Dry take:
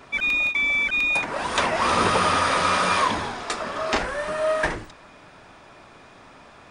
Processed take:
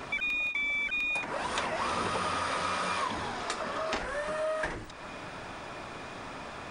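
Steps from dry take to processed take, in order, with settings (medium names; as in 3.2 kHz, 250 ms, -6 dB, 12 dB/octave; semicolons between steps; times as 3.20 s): compression 3:1, threshold -42 dBFS, peak gain reduction 18.5 dB; trim +6.5 dB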